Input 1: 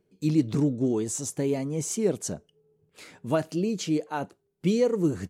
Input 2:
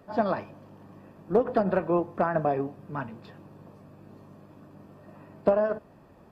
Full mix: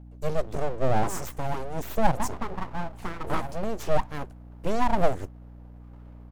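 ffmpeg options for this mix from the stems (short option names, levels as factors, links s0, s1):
-filter_complex "[0:a]aphaser=in_gain=1:out_gain=1:delay=1.5:decay=0.47:speed=1:type=triangular,volume=1.12[s0];[1:a]flanger=delay=8.9:depth=7:regen=80:speed=1.5:shape=sinusoidal,adelay=850,volume=0.891[s1];[s0][s1]amix=inputs=2:normalize=0,equalizer=f=125:t=o:w=1:g=-9,equalizer=f=250:t=o:w=1:g=3,equalizer=f=500:t=o:w=1:g=3,equalizer=f=1000:t=o:w=1:g=-5,equalizer=f=2000:t=o:w=1:g=-4,equalizer=f=4000:t=o:w=1:g=-9,equalizer=f=8000:t=o:w=1:g=-4,aeval=exprs='abs(val(0))':c=same,aeval=exprs='val(0)+0.00631*(sin(2*PI*60*n/s)+sin(2*PI*2*60*n/s)/2+sin(2*PI*3*60*n/s)/3+sin(2*PI*4*60*n/s)/4+sin(2*PI*5*60*n/s)/5)':c=same"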